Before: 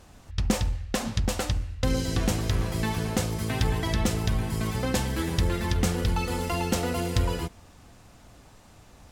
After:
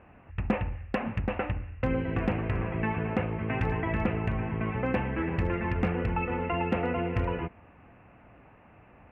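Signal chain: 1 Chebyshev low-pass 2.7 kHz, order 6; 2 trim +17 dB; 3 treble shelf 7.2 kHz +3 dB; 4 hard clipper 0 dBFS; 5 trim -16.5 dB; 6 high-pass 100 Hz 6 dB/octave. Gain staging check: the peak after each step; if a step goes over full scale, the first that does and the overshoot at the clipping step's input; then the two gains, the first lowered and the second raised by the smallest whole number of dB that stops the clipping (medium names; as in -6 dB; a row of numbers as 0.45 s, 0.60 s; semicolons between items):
-12.0 dBFS, +5.0 dBFS, +5.0 dBFS, 0.0 dBFS, -16.5 dBFS, -13.5 dBFS; step 2, 5.0 dB; step 2 +12 dB, step 5 -11.5 dB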